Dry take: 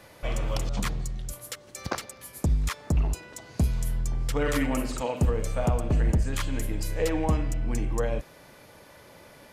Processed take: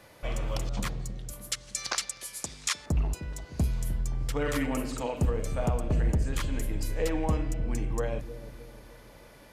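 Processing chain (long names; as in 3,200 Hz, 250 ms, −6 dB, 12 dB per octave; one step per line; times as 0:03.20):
0:01.52–0:02.86: meter weighting curve ITU-R 468
on a send: bucket-brigade delay 306 ms, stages 1,024, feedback 52%, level −11 dB
on the sum: level −3 dB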